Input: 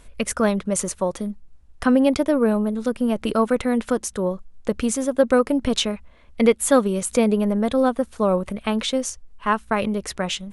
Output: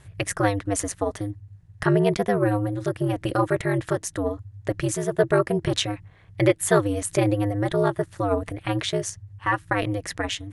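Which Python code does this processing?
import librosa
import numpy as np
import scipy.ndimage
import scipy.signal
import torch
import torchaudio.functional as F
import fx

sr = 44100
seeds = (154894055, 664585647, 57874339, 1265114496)

y = fx.peak_eq(x, sr, hz=1800.0, db=10.5, octaves=0.22)
y = y * np.sin(2.0 * np.pi * 100.0 * np.arange(len(y)) / sr)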